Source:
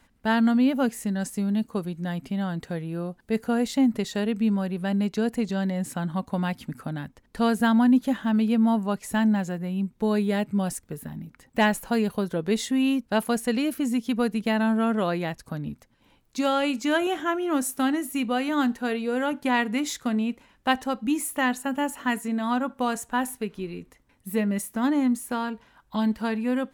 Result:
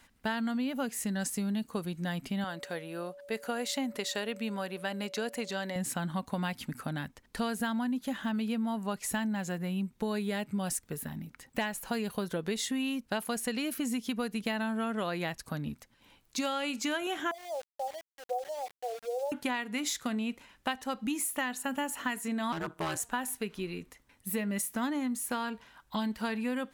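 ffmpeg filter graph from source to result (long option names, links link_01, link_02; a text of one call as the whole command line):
ffmpeg -i in.wav -filter_complex "[0:a]asettb=1/sr,asplit=3[link_01][link_02][link_03];[link_01]atrim=end=2.444[link_04];[link_02]atrim=start=2.44:end=5.76,asetpts=PTS-STARTPTS,afade=type=in:duration=0.004:curve=qsin,afade=type=out:start_time=3.316:duration=0.004:curve=qsin,bass=frequency=250:gain=-14,treble=frequency=4000:gain=-1,aeval=exprs='val(0)+0.00562*sin(2*PI*570*n/s)':channel_layout=same[link_05];[link_03]atrim=start=5.756[link_06];[link_04][link_05]acrossfade=duration=0.004:curve1=hsin:curve2=qsin[link_07];[link_07][link_06]acrossfade=duration=0.004:curve1=qsin:curve2=hsin,asettb=1/sr,asplit=3[link_08][link_09][link_10];[link_08]atrim=end=17.314[link_11];[link_09]atrim=start=17.31:end=19.32,asetpts=PTS-STARTPTS,afade=type=in:duration=0.004:curve=qsin,afade=type=out:start_time=2.006:duration=0.004:curve=qsin,asuperpass=centerf=620:order=8:qfactor=1.9,aeval=exprs='val(0)*gte(abs(val(0)),0.00631)':channel_layout=same[link_12];[link_10]atrim=start=19.316[link_13];[link_11][link_12]acrossfade=duration=0.004:curve1=hsin:curve2=qsin[link_14];[link_14][link_13]acrossfade=duration=0.004:curve1=qsin:curve2=hsin,asettb=1/sr,asplit=3[link_15][link_16][link_17];[link_15]atrim=end=22.524[link_18];[link_16]atrim=start=22.52:end=23,asetpts=PTS-STARTPTS,afade=type=in:duration=0.004:curve=qsin,afade=type=out:start_time=0.476:duration=0.004:curve=qsin,aeval=exprs='val(0)*sin(2*PI*82*n/s)':channel_layout=same,asoftclip=type=hard:threshold=-24.5dB[link_19];[link_17]atrim=start=22.996[link_20];[link_18][link_19]acrossfade=duration=0.004:curve1=hsin:curve2=qsin[link_21];[link_21][link_20]acrossfade=duration=0.004:curve1=qsin:curve2=hsin,tiltshelf=frequency=1100:gain=-4,acompressor=threshold=-29dB:ratio=10" out.wav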